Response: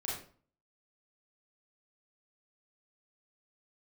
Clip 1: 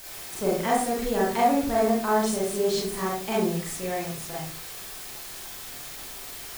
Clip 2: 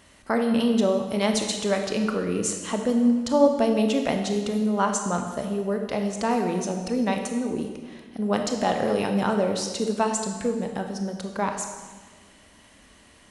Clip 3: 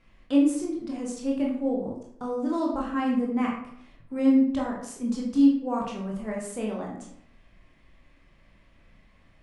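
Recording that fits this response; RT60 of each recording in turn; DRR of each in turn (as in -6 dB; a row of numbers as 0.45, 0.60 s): 1; 0.45, 1.5, 0.65 s; -6.0, 4.0, -2.5 dB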